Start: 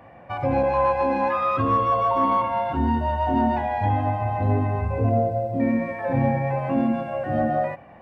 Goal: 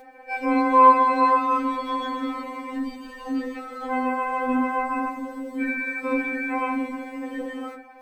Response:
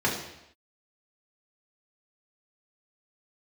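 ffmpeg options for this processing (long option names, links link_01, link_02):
-filter_complex "[0:a]crystalizer=i=3:c=0,asplit=3[link_01][link_02][link_03];[link_02]asetrate=22050,aresample=44100,atempo=2,volume=-4dB[link_04];[link_03]asetrate=29433,aresample=44100,atempo=1.49831,volume=-6dB[link_05];[link_01][link_04][link_05]amix=inputs=3:normalize=0,asplit=2[link_06][link_07];[1:a]atrim=start_sample=2205,asetrate=88200,aresample=44100[link_08];[link_07][link_08]afir=irnorm=-1:irlink=0,volume=-15dB[link_09];[link_06][link_09]amix=inputs=2:normalize=0,afftfilt=real='re*3.46*eq(mod(b,12),0)':imag='im*3.46*eq(mod(b,12),0)':win_size=2048:overlap=0.75,volume=-1.5dB"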